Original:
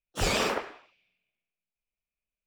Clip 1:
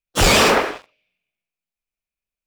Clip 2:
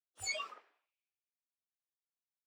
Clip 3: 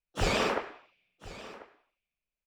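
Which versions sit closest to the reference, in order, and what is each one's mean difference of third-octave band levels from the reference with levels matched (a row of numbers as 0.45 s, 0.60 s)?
3, 1, 2; 2.0 dB, 3.0 dB, 14.0 dB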